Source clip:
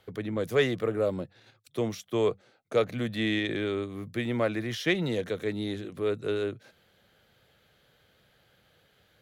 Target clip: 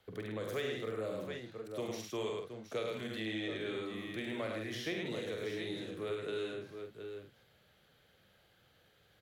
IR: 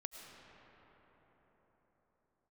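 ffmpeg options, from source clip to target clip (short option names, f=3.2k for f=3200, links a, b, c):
-filter_complex "[0:a]aecho=1:1:46|72|103|157|719|760:0.596|0.376|0.668|0.299|0.266|0.141,acrossover=split=390|1000|2200[a][b][c][d];[a]acompressor=threshold=-38dB:ratio=4[e];[b]acompressor=threshold=-34dB:ratio=4[f];[c]acompressor=threshold=-44dB:ratio=4[g];[d]acompressor=threshold=-37dB:ratio=4[h];[e][f][g][h]amix=inputs=4:normalize=0,volume=-6.5dB"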